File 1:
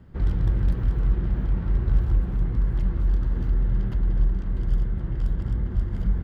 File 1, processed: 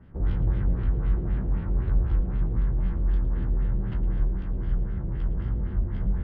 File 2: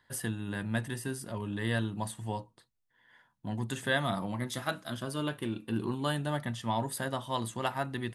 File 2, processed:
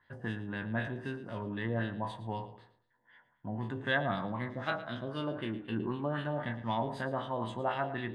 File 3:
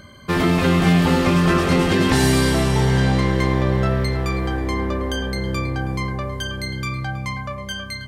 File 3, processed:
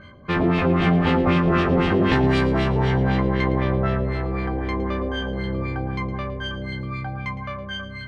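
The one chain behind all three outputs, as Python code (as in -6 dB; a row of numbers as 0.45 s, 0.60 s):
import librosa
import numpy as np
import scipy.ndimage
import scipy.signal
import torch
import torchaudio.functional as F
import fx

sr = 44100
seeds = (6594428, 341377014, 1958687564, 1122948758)

y = fx.spec_trails(x, sr, decay_s=0.53)
y = fx.filter_lfo_lowpass(y, sr, shape='sine', hz=3.9, low_hz=560.0, high_hz=3200.0, q=1.4)
y = fx.echo_feedback(y, sr, ms=112, feedback_pct=34, wet_db=-15.0)
y = y * 10.0 ** (-3.5 / 20.0)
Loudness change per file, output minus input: -2.0 LU, -1.5 LU, -2.5 LU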